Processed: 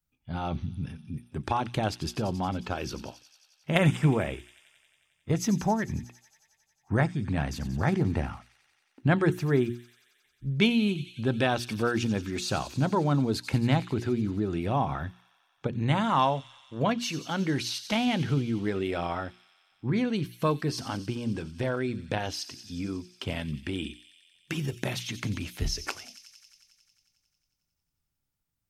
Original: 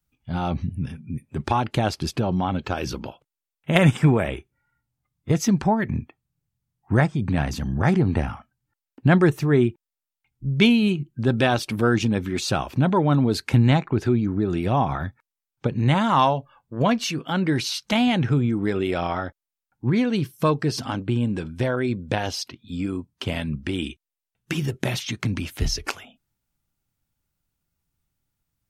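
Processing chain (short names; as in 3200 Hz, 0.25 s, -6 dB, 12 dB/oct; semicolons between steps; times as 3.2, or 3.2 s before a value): notches 60/120/180/240/300/360 Hz; thin delay 90 ms, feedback 78%, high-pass 3800 Hz, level -10 dB; gain -5.5 dB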